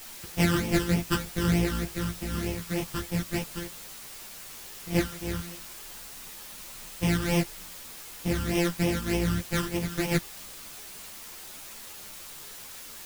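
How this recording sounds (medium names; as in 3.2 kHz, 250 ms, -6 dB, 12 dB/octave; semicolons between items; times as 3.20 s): a buzz of ramps at a fixed pitch in blocks of 256 samples; phasing stages 12, 3.3 Hz, lowest notch 690–1400 Hz; a quantiser's noise floor 8-bit, dither triangular; a shimmering, thickened sound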